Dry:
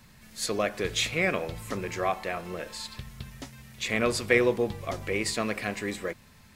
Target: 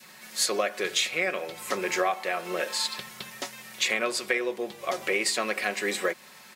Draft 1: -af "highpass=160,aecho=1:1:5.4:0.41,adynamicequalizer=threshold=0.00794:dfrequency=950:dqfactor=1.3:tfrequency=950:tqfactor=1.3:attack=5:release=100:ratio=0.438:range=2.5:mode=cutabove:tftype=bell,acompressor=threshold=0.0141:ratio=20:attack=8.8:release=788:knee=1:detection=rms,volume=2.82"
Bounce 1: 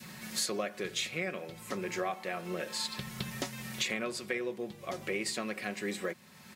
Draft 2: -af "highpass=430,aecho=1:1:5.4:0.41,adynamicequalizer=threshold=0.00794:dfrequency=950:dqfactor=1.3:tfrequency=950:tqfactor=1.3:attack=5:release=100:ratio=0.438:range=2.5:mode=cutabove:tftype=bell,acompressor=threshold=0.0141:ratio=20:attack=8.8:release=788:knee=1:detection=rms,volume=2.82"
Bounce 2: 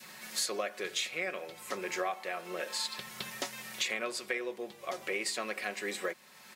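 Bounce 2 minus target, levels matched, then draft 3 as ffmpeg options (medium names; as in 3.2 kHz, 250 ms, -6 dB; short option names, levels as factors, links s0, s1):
compression: peak gain reduction +8 dB
-af "highpass=430,aecho=1:1:5.4:0.41,adynamicequalizer=threshold=0.00794:dfrequency=950:dqfactor=1.3:tfrequency=950:tqfactor=1.3:attack=5:release=100:ratio=0.438:range=2.5:mode=cutabove:tftype=bell,acompressor=threshold=0.0376:ratio=20:attack=8.8:release=788:knee=1:detection=rms,volume=2.82"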